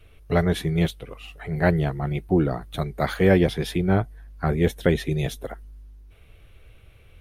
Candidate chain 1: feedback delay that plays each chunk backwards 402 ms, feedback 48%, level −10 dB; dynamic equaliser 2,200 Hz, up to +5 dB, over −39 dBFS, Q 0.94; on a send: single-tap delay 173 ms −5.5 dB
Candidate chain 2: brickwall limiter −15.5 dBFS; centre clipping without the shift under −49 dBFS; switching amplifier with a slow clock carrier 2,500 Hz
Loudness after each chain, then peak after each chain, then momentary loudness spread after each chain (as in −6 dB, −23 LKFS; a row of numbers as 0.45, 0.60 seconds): −22.0, −29.0 LKFS; −3.0, −15.0 dBFS; 15, 11 LU